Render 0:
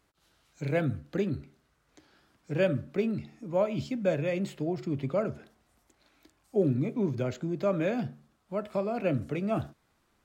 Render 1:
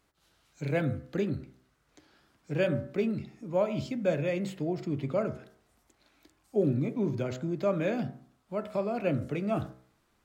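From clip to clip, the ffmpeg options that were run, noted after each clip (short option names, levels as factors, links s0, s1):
-af "bandreject=f=63.72:t=h:w=4,bandreject=f=127.44:t=h:w=4,bandreject=f=191.16:t=h:w=4,bandreject=f=254.88:t=h:w=4,bandreject=f=318.6:t=h:w=4,bandreject=f=382.32:t=h:w=4,bandreject=f=446.04:t=h:w=4,bandreject=f=509.76:t=h:w=4,bandreject=f=573.48:t=h:w=4,bandreject=f=637.2:t=h:w=4,bandreject=f=700.92:t=h:w=4,bandreject=f=764.64:t=h:w=4,bandreject=f=828.36:t=h:w=4,bandreject=f=892.08:t=h:w=4,bandreject=f=955.8:t=h:w=4,bandreject=f=1019.52:t=h:w=4,bandreject=f=1083.24:t=h:w=4,bandreject=f=1146.96:t=h:w=4,bandreject=f=1210.68:t=h:w=4,bandreject=f=1274.4:t=h:w=4,bandreject=f=1338.12:t=h:w=4,bandreject=f=1401.84:t=h:w=4,bandreject=f=1465.56:t=h:w=4,bandreject=f=1529.28:t=h:w=4,bandreject=f=1593:t=h:w=4,bandreject=f=1656.72:t=h:w=4,bandreject=f=1720.44:t=h:w=4,bandreject=f=1784.16:t=h:w=4,bandreject=f=1847.88:t=h:w=4,bandreject=f=1911.6:t=h:w=4,bandreject=f=1975.32:t=h:w=4,bandreject=f=2039.04:t=h:w=4,bandreject=f=2102.76:t=h:w=4,bandreject=f=2166.48:t=h:w=4"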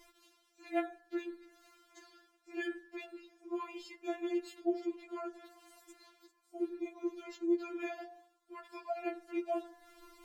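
-af "areverse,acompressor=mode=upward:threshold=0.0158:ratio=2.5,areverse,afftfilt=real='re*4*eq(mod(b,16),0)':imag='im*4*eq(mod(b,16),0)':win_size=2048:overlap=0.75,volume=0.631"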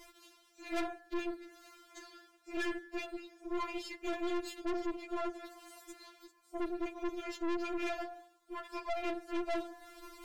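-af "aeval=exprs='(tanh(141*val(0)+0.7)-tanh(0.7))/141':c=same,volume=3.16"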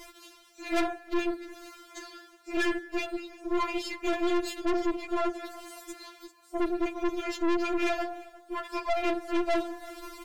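-filter_complex "[0:a]asplit=2[s0][s1];[s1]adelay=349.9,volume=0.1,highshelf=f=4000:g=-7.87[s2];[s0][s2]amix=inputs=2:normalize=0,volume=2.66"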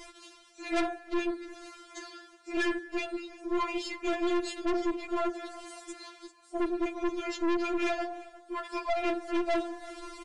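-af "aeval=exprs='0.106*(cos(1*acos(clip(val(0)/0.106,-1,1)))-cos(1*PI/2))+0.0133*(cos(2*acos(clip(val(0)/0.106,-1,1)))-cos(2*PI/2))+0.00376*(cos(6*acos(clip(val(0)/0.106,-1,1)))-cos(6*PI/2))':c=same,aresample=22050,aresample=44100"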